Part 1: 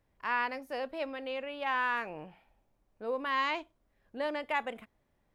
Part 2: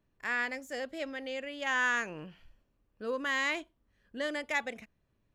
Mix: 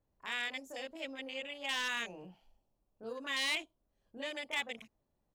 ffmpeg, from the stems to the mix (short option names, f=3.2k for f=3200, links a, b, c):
-filter_complex "[0:a]lowpass=1.1k,acompressor=threshold=-40dB:ratio=6,volume=-6dB[a];[1:a]afwtdn=0.00794,aexciter=amount=6.2:drive=6.8:freq=2.4k,adelay=22,volume=-9dB[b];[a][b]amix=inputs=2:normalize=0,volume=27dB,asoftclip=hard,volume=-27dB"